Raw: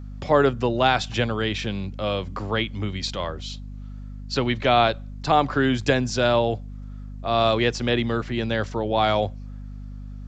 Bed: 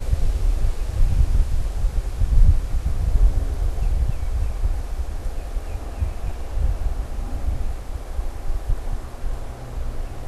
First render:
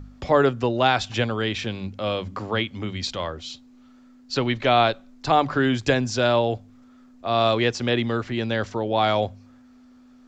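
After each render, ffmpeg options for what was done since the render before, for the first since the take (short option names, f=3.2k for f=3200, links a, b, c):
-af "bandreject=f=50:t=h:w=4,bandreject=f=100:t=h:w=4,bandreject=f=150:t=h:w=4,bandreject=f=200:t=h:w=4"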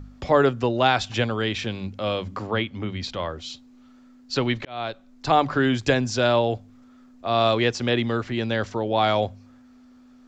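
-filter_complex "[0:a]asettb=1/sr,asplit=3[a][b][c];[a]atrim=end=2.474[d];[b]atrim=start=2.47:end=3.3,asetpts=PTS-STARTPTS,afade=t=in:d=0.004:c=qsin,afade=t=out:st=0.826:d=0.004:c=qsin,aemphasis=mode=reproduction:type=50fm[e];[c]atrim=start=3.296[f];[d][e]acrossfade=d=0.004:c1=hsin:c2=qsin[g];[g][f]acrossfade=d=0.004:c1=qsin:c2=hsin,asplit=2[h][i];[h]atrim=end=4.65,asetpts=PTS-STARTPTS,afade=t=out:st=4.646:d=0.004:c=hsin[j];[i]atrim=start=4.65,asetpts=PTS-STARTPTS,afade=t=in:d=0.64[k];[j][k]concat=n=2:v=0:a=1"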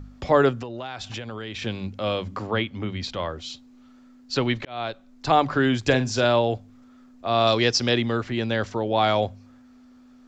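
-filter_complex "[0:a]asettb=1/sr,asplit=3[a][b][c];[a]atrim=end=0.604[d];[b]atrim=start=0.6:end=1.62,asetpts=PTS-STARTPTS,afade=t=in:d=0.004:c=qsin,afade=t=out:st=1.016:d=0.004:c=qsin,acompressor=threshold=-29dB:ratio=20:attack=3.2:release=140:knee=1:detection=peak[e];[c]atrim=start=1.616[f];[d][e]acrossfade=d=0.004:c1=hsin:c2=qsin[g];[g][f]acrossfade=d=0.004:c1=qsin:c2=hsin,asettb=1/sr,asplit=3[h][i][j];[h]atrim=end=5.814[k];[i]atrim=start=5.81:end=6.25,asetpts=PTS-STARTPTS,afade=t=in:d=0.004:c=qsin,afade=t=out:st=0.436:d=0.004:c=qsin,asplit=2[l][m];[m]adelay=46,volume=-12dB[n];[l][n]amix=inputs=2:normalize=0,atrim=end_sample=19404[o];[j]atrim=start=6.246[p];[k][o]acrossfade=d=0.004:c1=hsin:c2=qsin[q];[q][p]acrossfade=d=0.004:c1=qsin:c2=hsin,asettb=1/sr,asplit=3[r][s][t];[r]atrim=end=7.474[u];[s]atrim=start=7.47:end=7.98,asetpts=PTS-STARTPTS,afade=t=in:d=0.004:c=qsin,afade=t=out:st=0.506:d=0.004:c=qsin,equalizer=f=5.2k:t=o:w=0.6:g=14[v];[t]atrim=start=7.976[w];[u][v]acrossfade=d=0.004:c1=hsin:c2=qsin[x];[x][w]acrossfade=d=0.004:c1=qsin:c2=hsin"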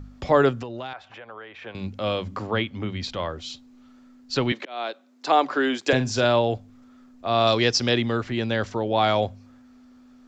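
-filter_complex "[0:a]asettb=1/sr,asplit=3[a][b][c];[a]atrim=end=0.934[d];[b]atrim=start=0.93:end=1.75,asetpts=PTS-STARTPTS,afade=t=in:d=0.004:c=qsin,afade=t=out:st=0.816:d=0.004:c=qsin,acrossover=split=470 2200:gain=0.1 1 0.0708[e][f][g];[e][f][g]amix=inputs=3:normalize=0[h];[c]atrim=start=1.746[i];[d][h]acrossfade=d=0.004:c1=hsin:c2=qsin[j];[j][i]acrossfade=d=0.004:c1=qsin:c2=hsin,asettb=1/sr,asplit=3[k][l][m];[k]atrim=end=4.524[n];[l]atrim=start=4.52:end=5.93,asetpts=PTS-STARTPTS,afade=t=in:d=0.004:c=qsin,afade=t=out:st=1.406:d=0.004:c=qsin,highpass=f=270:w=0.5412,highpass=f=270:w=1.3066[o];[m]atrim=start=5.926[p];[n][o]acrossfade=d=0.004:c1=hsin:c2=qsin[q];[q][p]acrossfade=d=0.004:c1=qsin:c2=hsin"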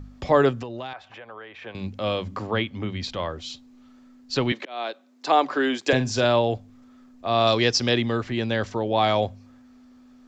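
-af "bandreject=f=1.4k:w=19"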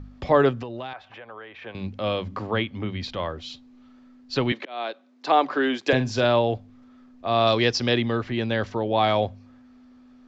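-af "lowpass=4.6k"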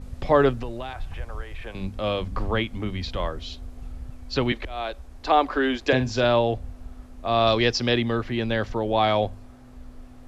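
-filter_complex "[1:a]volume=-16dB[a];[0:a][a]amix=inputs=2:normalize=0"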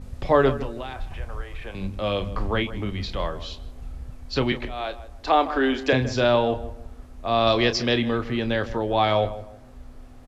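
-filter_complex "[0:a]asplit=2[a][b];[b]adelay=30,volume=-11dB[c];[a][c]amix=inputs=2:normalize=0,asplit=2[d][e];[e]adelay=157,lowpass=f=1.6k:p=1,volume=-13.5dB,asplit=2[f][g];[g]adelay=157,lowpass=f=1.6k:p=1,volume=0.31,asplit=2[h][i];[i]adelay=157,lowpass=f=1.6k:p=1,volume=0.31[j];[d][f][h][j]amix=inputs=4:normalize=0"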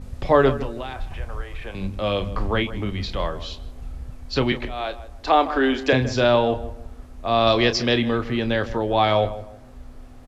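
-af "volume=2dB"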